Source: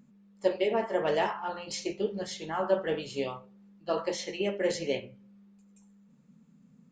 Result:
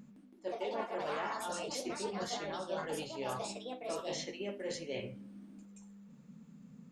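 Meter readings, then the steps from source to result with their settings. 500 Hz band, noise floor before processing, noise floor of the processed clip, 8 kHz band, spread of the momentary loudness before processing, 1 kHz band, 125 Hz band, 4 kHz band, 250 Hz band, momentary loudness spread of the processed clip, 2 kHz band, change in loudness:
−9.5 dB, −61 dBFS, −59 dBFS, −1.5 dB, 8 LU, −5.5 dB, −5.0 dB, −4.5 dB, −7.0 dB, 18 LU, −6.5 dB, −8.0 dB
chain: reversed playback
downward compressor 6 to 1, threshold −43 dBFS, peak gain reduction 21.5 dB
reversed playback
delay with pitch and tempo change per echo 163 ms, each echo +4 semitones, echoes 2
level +4.5 dB

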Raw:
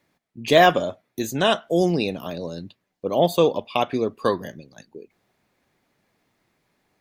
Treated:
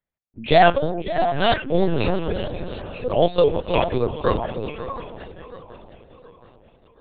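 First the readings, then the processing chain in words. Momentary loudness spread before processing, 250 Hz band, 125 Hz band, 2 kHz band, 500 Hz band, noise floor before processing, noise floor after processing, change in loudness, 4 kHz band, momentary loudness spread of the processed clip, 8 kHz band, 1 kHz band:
17 LU, −0.5 dB, +3.5 dB, 0.0 dB, +1.5 dB, −76 dBFS, −58 dBFS, +0.5 dB, −1.5 dB, 19 LU, below −40 dB, +2.0 dB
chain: echo through a band-pass that steps 312 ms, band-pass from 320 Hz, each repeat 1.4 octaves, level −3.5 dB
noise gate −50 dBFS, range −22 dB
on a send: feedback echo with a long and a short gap by turns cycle 724 ms, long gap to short 3 to 1, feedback 43%, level −14 dB
on the sum: linear-prediction vocoder at 8 kHz pitch kept
pitch modulation by a square or saw wave saw up 3.2 Hz, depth 100 cents
level +1 dB

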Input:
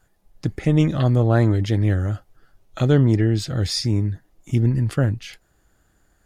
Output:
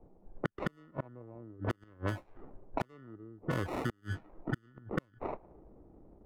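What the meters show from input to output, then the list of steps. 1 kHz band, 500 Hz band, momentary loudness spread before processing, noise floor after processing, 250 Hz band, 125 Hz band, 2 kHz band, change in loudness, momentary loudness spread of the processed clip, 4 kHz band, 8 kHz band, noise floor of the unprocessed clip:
−8.0 dB, −15.5 dB, 13 LU, −67 dBFS, −19.0 dB, −22.5 dB, −9.0 dB, −19.5 dB, 20 LU, −22.5 dB, −23.5 dB, −64 dBFS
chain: high-shelf EQ 2,600 Hz −8.5 dB
gate with flip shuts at −13 dBFS, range −40 dB
sample-rate reduction 1,600 Hz, jitter 0%
three-way crossover with the lows and the highs turned down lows −12 dB, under 260 Hz, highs −12 dB, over 2,300 Hz
low-pass that shuts in the quiet parts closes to 410 Hz, open at −33.5 dBFS
downward compressor 8 to 1, threshold −47 dBFS, peak gain reduction 21.5 dB
level +15 dB

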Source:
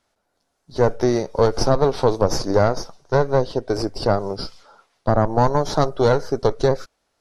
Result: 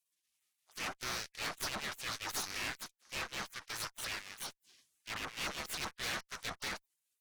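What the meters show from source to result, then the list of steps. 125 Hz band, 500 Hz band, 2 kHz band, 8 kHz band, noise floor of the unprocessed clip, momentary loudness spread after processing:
−31.0 dB, −33.0 dB, −6.0 dB, −6.0 dB, −73 dBFS, 7 LU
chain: half-wave rectification
gate on every frequency bin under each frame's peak −30 dB weak
tube saturation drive 42 dB, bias 0.8
level +8.5 dB

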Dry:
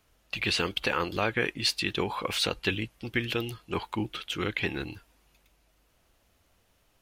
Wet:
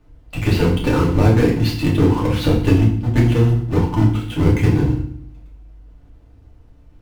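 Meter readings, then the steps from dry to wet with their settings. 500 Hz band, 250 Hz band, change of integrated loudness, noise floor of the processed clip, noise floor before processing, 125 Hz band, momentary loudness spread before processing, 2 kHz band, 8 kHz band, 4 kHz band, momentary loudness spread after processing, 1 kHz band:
+12.0 dB, +17.5 dB, +13.0 dB, −48 dBFS, −69 dBFS, +23.5 dB, 7 LU, +1.0 dB, can't be measured, −1.5 dB, 6 LU, +7.0 dB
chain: each half-wave held at its own peak
spectral tilt −3.5 dB per octave
feedback delay network reverb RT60 0.57 s, low-frequency decay 1.6×, high-frequency decay 0.95×, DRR −4 dB
level −2.5 dB

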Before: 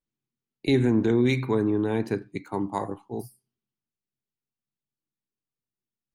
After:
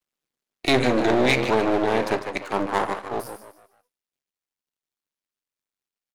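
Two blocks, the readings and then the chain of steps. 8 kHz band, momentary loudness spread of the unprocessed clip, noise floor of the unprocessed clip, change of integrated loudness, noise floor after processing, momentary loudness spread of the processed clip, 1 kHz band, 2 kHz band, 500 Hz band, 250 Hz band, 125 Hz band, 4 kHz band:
+11.0 dB, 13 LU, below −85 dBFS, +3.0 dB, below −85 dBFS, 11 LU, +10.5 dB, +10.5 dB, +4.5 dB, −0.5 dB, −4.0 dB, +10.5 dB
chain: echo with shifted repeats 150 ms, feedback 33%, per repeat +93 Hz, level −10.5 dB
half-wave rectification
mid-hump overdrive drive 16 dB, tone 7,700 Hz, clips at −11 dBFS
level +4 dB

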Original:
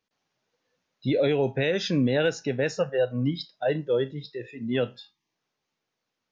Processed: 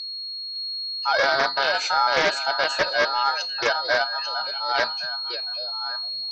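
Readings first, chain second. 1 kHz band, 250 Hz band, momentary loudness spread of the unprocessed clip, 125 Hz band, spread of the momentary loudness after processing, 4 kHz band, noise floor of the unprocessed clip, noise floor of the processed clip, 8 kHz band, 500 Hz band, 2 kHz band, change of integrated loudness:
+17.5 dB, −14.5 dB, 9 LU, −19.0 dB, 7 LU, +14.5 dB, −83 dBFS, −33 dBFS, can't be measured, −1.5 dB, +12.5 dB, +3.5 dB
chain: ring modulation 1,100 Hz
steady tone 4,300 Hz −35 dBFS
on a send: echo through a band-pass that steps 559 ms, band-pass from 3,000 Hz, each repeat −1.4 octaves, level −5.5 dB
on the sum: highs frequency-modulated by the lows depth 0.28 ms
level +5 dB

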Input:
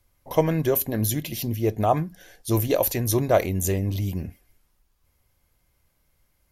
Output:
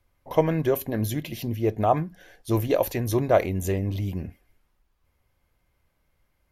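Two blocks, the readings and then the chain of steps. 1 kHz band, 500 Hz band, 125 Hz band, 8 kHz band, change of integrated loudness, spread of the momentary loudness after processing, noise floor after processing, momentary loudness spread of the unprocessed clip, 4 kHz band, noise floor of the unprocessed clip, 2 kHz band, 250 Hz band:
0.0 dB, 0.0 dB, −2.0 dB, −9.5 dB, −1.5 dB, 10 LU, −72 dBFS, 8 LU, −4.5 dB, −69 dBFS, −0.5 dB, −1.0 dB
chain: bass and treble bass −2 dB, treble −10 dB

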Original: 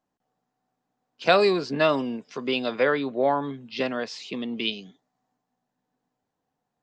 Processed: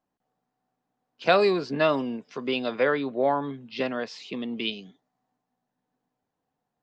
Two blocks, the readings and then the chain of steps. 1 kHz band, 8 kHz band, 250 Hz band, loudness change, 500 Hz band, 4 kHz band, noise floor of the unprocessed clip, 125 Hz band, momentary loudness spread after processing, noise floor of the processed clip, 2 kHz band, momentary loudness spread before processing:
−1.0 dB, can't be measured, −1.0 dB, −1.5 dB, −1.0 dB, −3.0 dB, −82 dBFS, −1.0 dB, 13 LU, −83 dBFS, −1.5 dB, 13 LU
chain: high-shelf EQ 7,100 Hz −10.5 dB
level −1 dB

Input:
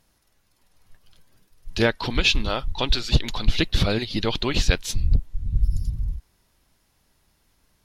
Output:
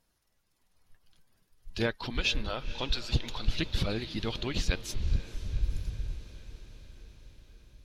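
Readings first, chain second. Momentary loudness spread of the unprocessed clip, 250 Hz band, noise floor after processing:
9 LU, −9.0 dB, −74 dBFS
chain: spectral magnitudes quantised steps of 15 dB
on a send: feedback delay with all-pass diffusion 490 ms, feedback 66%, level −15.5 dB
on the sum: level −9 dB

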